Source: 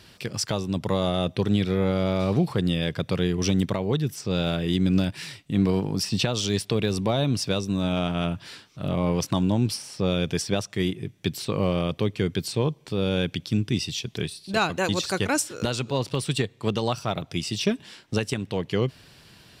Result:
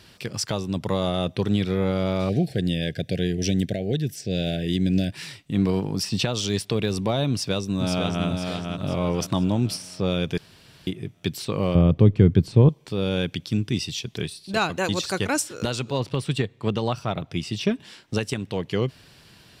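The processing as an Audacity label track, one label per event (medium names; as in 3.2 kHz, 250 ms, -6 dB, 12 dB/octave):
2.290000	5.120000	elliptic band-stop 720–1600 Hz
7.300000	8.260000	echo throw 500 ms, feedback 45%, level -4.5 dB
10.380000	10.870000	room tone
11.750000	12.690000	tilt EQ -4 dB/octave
16.000000	17.800000	tone controls bass +2 dB, treble -7 dB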